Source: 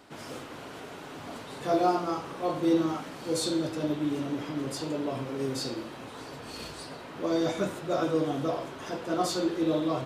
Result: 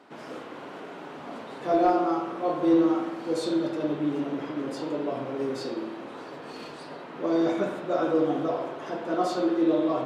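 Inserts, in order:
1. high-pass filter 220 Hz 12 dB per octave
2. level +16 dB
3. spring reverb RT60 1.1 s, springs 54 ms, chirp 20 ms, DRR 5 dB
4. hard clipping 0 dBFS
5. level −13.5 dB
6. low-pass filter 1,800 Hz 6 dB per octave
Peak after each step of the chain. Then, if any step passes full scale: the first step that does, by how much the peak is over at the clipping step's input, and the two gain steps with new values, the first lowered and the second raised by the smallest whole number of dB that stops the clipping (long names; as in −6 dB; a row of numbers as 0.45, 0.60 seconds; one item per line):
−13.0, +3.0, +4.0, 0.0, −13.5, −13.5 dBFS
step 2, 4.0 dB
step 2 +12 dB, step 5 −9.5 dB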